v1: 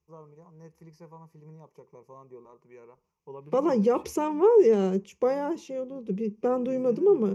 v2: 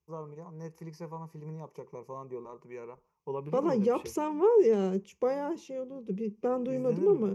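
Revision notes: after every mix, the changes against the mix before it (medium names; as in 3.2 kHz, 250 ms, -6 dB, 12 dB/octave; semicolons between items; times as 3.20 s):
first voice +7.0 dB; second voice -4.0 dB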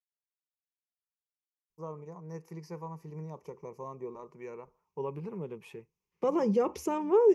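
first voice: entry +1.70 s; second voice: entry +2.70 s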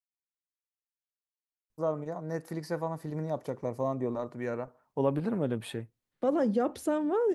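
first voice +11.0 dB; master: remove rippled EQ curve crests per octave 0.78, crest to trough 14 dB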